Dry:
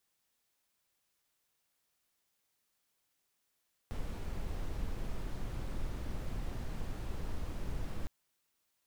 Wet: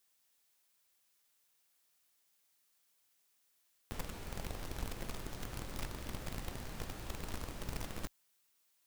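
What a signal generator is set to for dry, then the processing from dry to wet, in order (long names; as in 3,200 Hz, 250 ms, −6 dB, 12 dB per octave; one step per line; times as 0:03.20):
noise brown, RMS −36.5 dBFS 4.16 s
spectral tilt +1.5 dB per octave
in parallel at −5 dB: bit-depth reduction 6 bits, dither none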